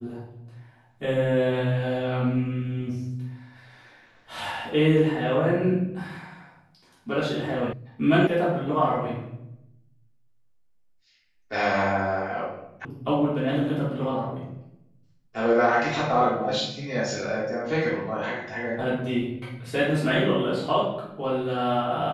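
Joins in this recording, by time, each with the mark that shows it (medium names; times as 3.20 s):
7.73 s: sound stops dead
8.27 s: sound stops dead
12.85 s: sound stops dead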